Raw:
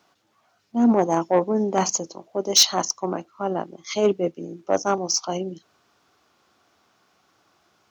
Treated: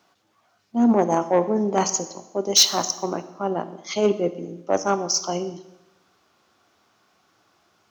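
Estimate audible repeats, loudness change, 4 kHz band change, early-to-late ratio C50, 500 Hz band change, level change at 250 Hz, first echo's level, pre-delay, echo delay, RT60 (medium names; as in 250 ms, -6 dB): no echo, +0.5 dB, +0.5 dB, 13.5 dB, +0.5 dB, +0.5 dB, no echo, 5 ms, no echo, 0.95 s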